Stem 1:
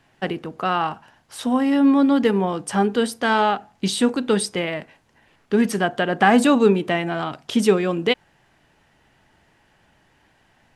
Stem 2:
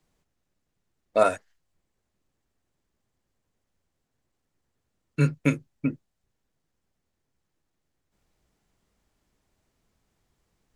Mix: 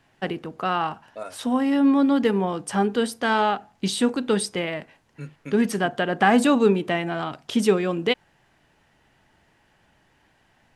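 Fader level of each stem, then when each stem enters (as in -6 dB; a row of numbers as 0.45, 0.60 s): -2.5, -15.5 dB; 0.00, 0.00 s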